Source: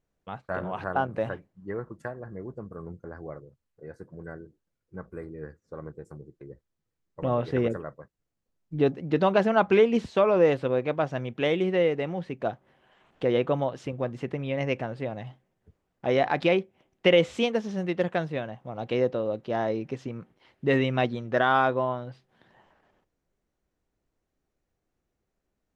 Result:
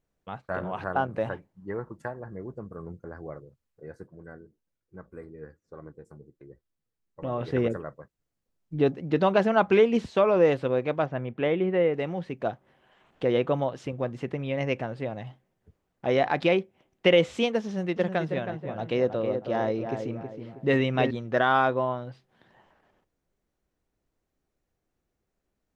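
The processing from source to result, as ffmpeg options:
-filter_complex "[0:a]asettb=1/sr,asplit=3[s0][s1][s2];[s0]atrim=end=1.254[s3];[s1]atrim=start=1.25:end=2.29,asetpts=PTS-STARTPTS,afade=t=in:d=0.004:c=qsin,afade=t=out:st=1.036:d=0.004:c=qsin,equalizer=f=890:w=5.9:g=7[s4];[s2]atrim=start=2.286[s5];[s3][s4]acrossfade=d=0.004:c1=hsin:c2=qsin[s6];[s6][s5]acrossfade=d=0.004:c1=qsin:c2=hsin,asettb=1/sr,asplit=3[s7][s8][s9];[s7]atrim=end=4.074[s10];[s8]atrim=start=4.07:end=7.41,asetpts=PTS-STARTPTS,afade=t=in:d=0.004:c=qsin,afade=t=out:st=3.336:d=0.004:c=qsin,flanger=delay=2.5:depth=2.4:regen=73:speed=1.2:shape=triangular[s11];[s9]atrim=start=7.406[s12];[s10][s11]acrossfade=d=0.004:c1=hsin:c2=qsin[s13];[s13][s12]acrossfade=d=0.004:c1=qsin:c2=hsin,asettb=1/sr,asplit=3[s14][s15][s16];[s14]atrim=end=11.064[s17];[s15]atrim=start=11.06:end=11.94,asetpts=PTS-STARTPTS,afade=t=in:d=0.004:c=qsin,afade=t=out:st=0.876:d=0.004:c=qsin,lowpass=2200[s18];[s16]atrim=start=11.936[s19];[s17][s18]acrossfade=d=0.004:c1=hsin:c2=qsin[s20];[s20][s19]acrossfade=d=0.004:c1=qsin:c2=hsin,asettb=1/sr,asplit=3[s21][s22][s23];[s21]atrim=end=17.644[s24];[s22]atrim=start=17.64:end=21.11,asetpts=PTS-STARTPTS,afade=t=in:d=0.004:c=qsin,afade=t=out:st=3.466:d=0.004:c=qsin,asplit=2[s25][s26];[s26]adelay=320,lowpass=f=1700:p=1,volume=0.473,asplit=2[s27][s28];[s28]adelay=320,lowpass=f=1700:p=1,volume=0.4,asplit=2[s29][s30];[s30]adelay=320,lowpass=f=1700:p=1,volume=0.4,asplit=2[s31][s32];[s32]adelay=320,lowpass=f=1700:p=1,volume=0.4,asplit=2[s33][s34];[s34]adelay=320,lowpass=f=1700:p=1,volume=0.4[s35];[s25][s27][s29][s31][s33][s35]amix=inputs=6:normalize=0,atrim=end_sample=153027[s36];[s23]atrim=start=21.106[s37];[s24][s36]acrossfade=d=0.004:c1=hsin:c2=qsin[s38];[s38][s37]acrossfade=d=0.004:c1=qsin:c2=hsin"

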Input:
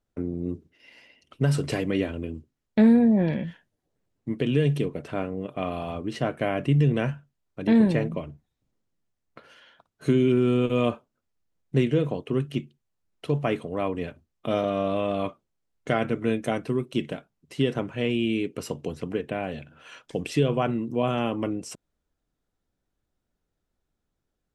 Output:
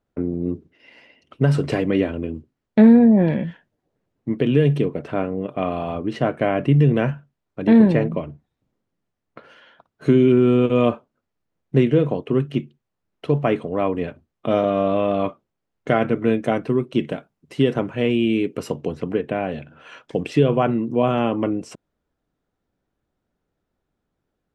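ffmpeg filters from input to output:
-filter_complex "[0:a]asettb=1/sr,asplit=3[s0][s1][s2];[s0]atrim=end=17.074[s3];[s1]atrim=start=17.07:end=18.72,asetpts=PTS-STARTPTS,afade=t=in:d=0.004:c=qsin,afade=t=out:st=1.646:d=0.004:c=qsin,highshelf=f=8100:g=9[s4];[s2]atrim=start=18.716[s5];[s3][s4]acrossfade=d=0.004:c1=hsin:c2=qsin[s6];[s6][s5]acrossfade=d=0.004:c1=qsin:c2=hsin,lowpass=f=1900:p=1,lowshelf=f=67:g=-10.5,volume=2.24"

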